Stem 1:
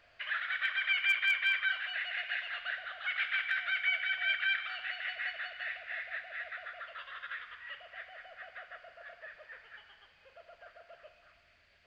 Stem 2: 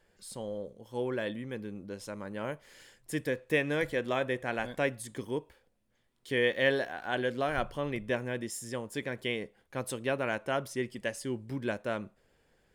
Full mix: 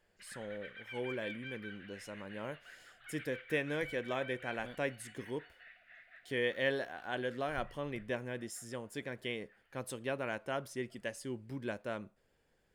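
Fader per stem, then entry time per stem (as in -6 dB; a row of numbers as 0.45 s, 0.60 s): -18.0 dB, -6.0 dB; 0.00 s, 0.00 s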